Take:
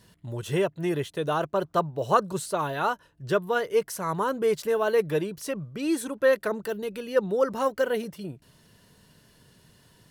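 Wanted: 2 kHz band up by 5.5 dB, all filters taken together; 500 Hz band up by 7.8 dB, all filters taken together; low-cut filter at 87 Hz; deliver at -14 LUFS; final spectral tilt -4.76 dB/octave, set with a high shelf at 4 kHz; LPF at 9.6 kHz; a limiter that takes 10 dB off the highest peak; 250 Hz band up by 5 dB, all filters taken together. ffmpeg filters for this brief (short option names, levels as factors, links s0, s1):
-af "highpass=87,lowpass=9600,equalizer=f=250:t=o:g=4,equalizer=f=500:t=o:g=7.5,equalizer=f=2000:t=o:g=6,highshelf=f=4000:g=4,volume=3.16,alimiter=limit=0.668:level=0:latency=1"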